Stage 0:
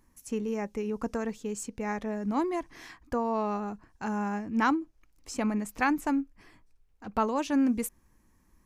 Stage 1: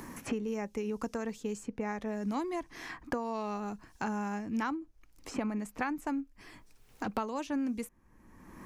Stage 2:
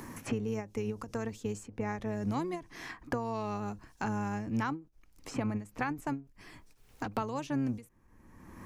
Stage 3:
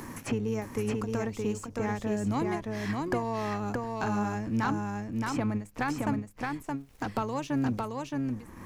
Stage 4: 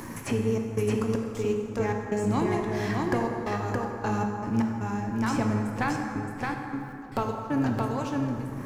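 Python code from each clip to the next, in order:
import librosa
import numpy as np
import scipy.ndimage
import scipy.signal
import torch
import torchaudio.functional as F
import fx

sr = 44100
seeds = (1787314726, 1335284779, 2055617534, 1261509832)

y1 = fx.band_squash(x, sr, depth_pct=100)
y1 = y1 * 10.0 ** (-5.5 / 20.0)
y2 = fx.octave_divider(y1, sr, octaves=1, level_db=-4.0)
y2 = fx.end_taper(y2, sr, db_per_s=200.0)
y3 = fx.leveller(y2, sr, passes=1)
y3 = y3 + 10.0 ** (-3.0 / 20.0) * np.pad(y3, (int(620 * sr / 1000.0), 0))[:len(y3)]
y4 = fx.step_gate(y3, sr, bpm=78, pattern='xxx.xx.x.x.xxx', floor_db=-24.0, edge_ms=4.5)
y4 = fx.rev_plate(y4, sr, seeds[0], rt60_s=2.8, hf_ratio=0.5, predelay_ms=0, drr_db=2.0)
y4 = y4 * 10.0 ** (2.0 / 20.0)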